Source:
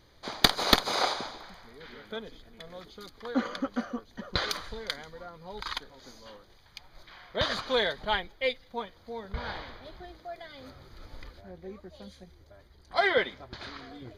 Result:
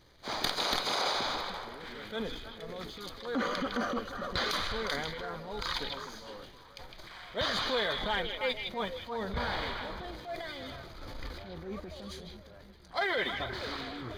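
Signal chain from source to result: transient shaper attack -8 dB, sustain +7 dB; compressor 6:1, threshold -32 dBFS, peak gain reduction 12.5 dB; sample leveller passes 1; delay with a stepping band-pass 0.157 s, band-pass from 3000 Hz, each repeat -1.4 oct, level -2 dB

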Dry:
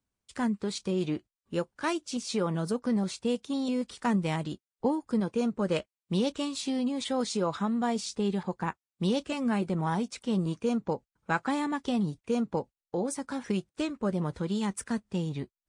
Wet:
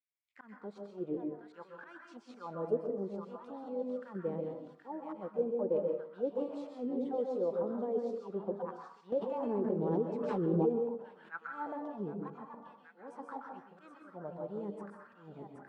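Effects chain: thinning echo 0.773 s, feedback 32%, high-pass 610 Hz, level -9 dB; tremolo saw up 0.57 Hz, depth 35%; auto swell 0.151 s; tilt shelf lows +5.5 dB, about 630 Hz; auto-wah 430–2200 Hz, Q 5.3, down, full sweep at -23.5 dBFS; plate-style reverb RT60 0.53 s, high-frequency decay 0.6×, pre-delay 0.115 s, DRR 2 dB; 9.12–11.32 backwards sustainer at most 20 dB/s; gain +4 dB

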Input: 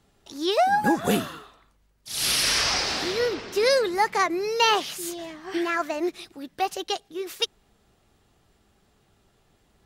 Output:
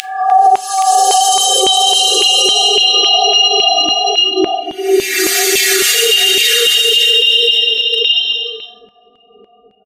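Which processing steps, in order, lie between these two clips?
high shelf 4500 Hz -2.5 dB; comb 4.2 ms, depth 99%; spectral gate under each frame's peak -10 dB strong; Paulstretch 7.7×, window 0.25 s, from 6.57; ten-band EQ 125 Hz -8 dB, 250 Hz -8 dB, 500 Hz -6 dB, 1000 Hz -10 dB, 2000 Hz +4 dB, 8000 Hz +7 dB; speakerphone echo 0.3 s, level -7 dB; compressor 12:1, threshold -38 dBFS, peak gain reduction 16 dB; LFO high-pass saw down 1.8 Hz 370–2900 Hz; on a send: echo 0.823 s -4 dB; on the sum: two-slope reverb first 0.28 s, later 1.6 s, from -18 dB, DRR 15.5 dB; maximiser +32.5 dB; gain -1 dB

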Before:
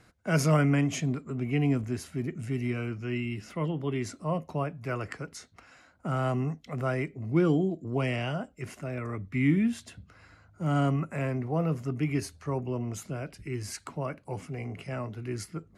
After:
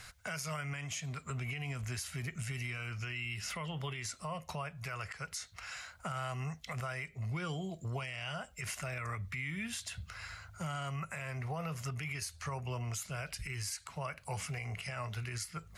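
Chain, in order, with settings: passive tone stack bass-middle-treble 10-0-10; compressor 6:1, threshold -51 dBFS, peak gain reduction 18.5 dB; limiter -45.5 dBFS, peak gain reduction 10.5 dB; gain +16 dB

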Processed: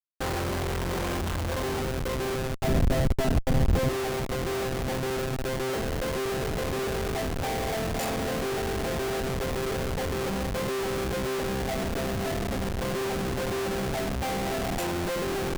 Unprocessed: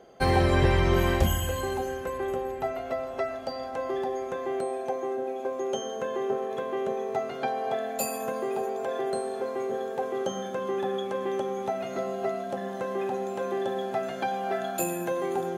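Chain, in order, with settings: Schmitt trigger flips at -30.5 dBFS; 2.64–3.89 low shelf 310 Hz +11 dB

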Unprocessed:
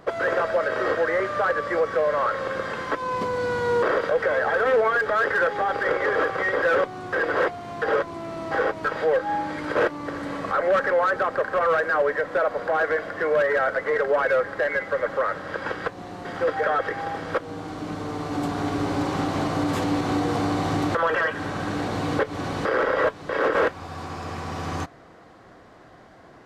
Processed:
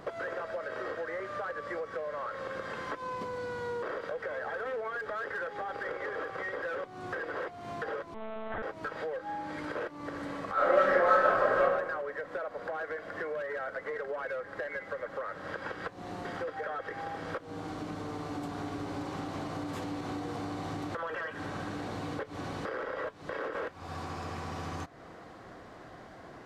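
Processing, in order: compressor 5:1, threshold -36 dBFS, peak gain reduction 17 dB; 8.14–8.63 monotone LPC vocoder at 8 kHz 220 Hz; 10.53–11.6 reverb throw, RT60 1.1 s, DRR -11 dB

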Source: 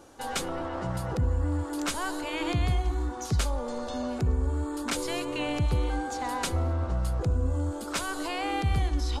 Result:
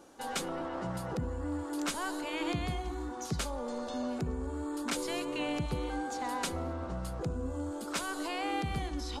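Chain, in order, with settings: resonant low shelf 130 Hz -7 dB, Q 1.5; gain -4 dB

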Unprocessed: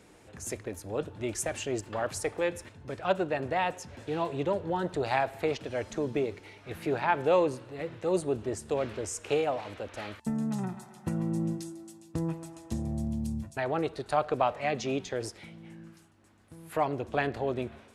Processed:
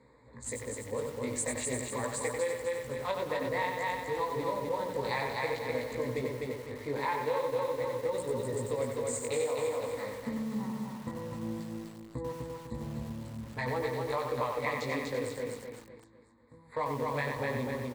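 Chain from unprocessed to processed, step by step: Wiener smoothing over 15 samples; ripple EQ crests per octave 0.99, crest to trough 15 dB; chorus 0.5 Hz, delay 15 ms, depth 6.1 ms; LPF 11000 Hz; tilt shelf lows -3 dB, about 870 Hz; de-hum 93.97 Hz, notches 9; on a send: feedback echo 0.251 s, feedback 38%, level -4 dB; on the sum: compressor 6:1, threshold -29 dBFS, peak gain reduction 10.5 dB; lo-fi delay 93 ms, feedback 35%, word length 8-bit, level -4.5 dB

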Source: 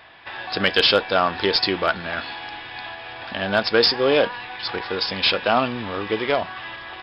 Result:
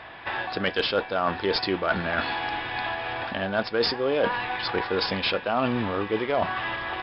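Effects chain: LPF 1900 Hz 6 dB/oct; reverse; compressor 6:1, threshold -29 dBFS, peak gain reduction 15 dB; reverse; gain +7 dB

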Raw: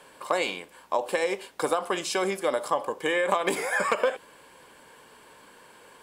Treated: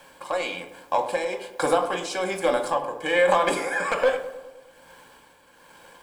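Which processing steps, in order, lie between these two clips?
LPF 9500 Hz 12 dB/oct; sample leveller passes 1; added noise white -65 dBFS; tremolo 1.2 Hz, depth 56%; darkening echo 0.103 s, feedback 63%, low-pass 1600 Hz, level -11.5 dB; reverb RT60 0.35 s, pre-delay 4 ms, DRR 4.5 dB

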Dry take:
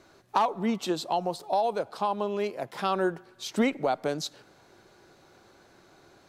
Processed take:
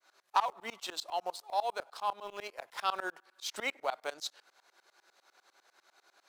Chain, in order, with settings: HPF 890 Hz 12 dB/oct; in parallel at -9 dB: sample gate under -38 dBFS; on the sum: tremolo saw up 10 Hz, depth 100%

